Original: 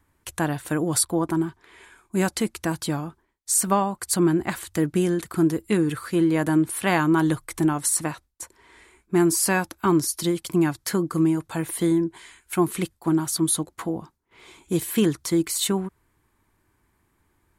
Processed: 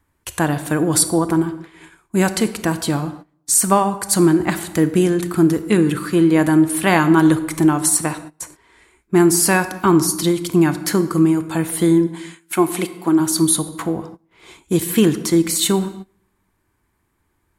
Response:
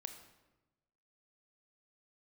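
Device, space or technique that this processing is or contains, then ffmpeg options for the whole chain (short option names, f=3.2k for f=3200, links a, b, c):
keyed gated reverb: -filter_complex "[0:a]asplit=3[a][b][c];[a]afade=t=out:st=12.06:d=0.02[d];[b]highpass=240,afade=t=in:st=12.06:d=0.02,afade=t=out:st=13.19:d=0.02[e];[c]afade=t=in:st=13.19:d=0.02[f];[d][e][f]amix=inputs=3:normalize=0,asplit=3[g][h][i];[1:a]atrim=start_sample=2205[j];[h][j]afir=irnorm=-1:irlink=0[k];[i]apad=whole_len=775597[l];[k][l]sidechaingate=range=-20dB:threshold=-48dB:ratio=16:detection=peak,volume=7.5dB[m];[g][m]amix=inputs=2:normalize=0,volume=-1.5dB"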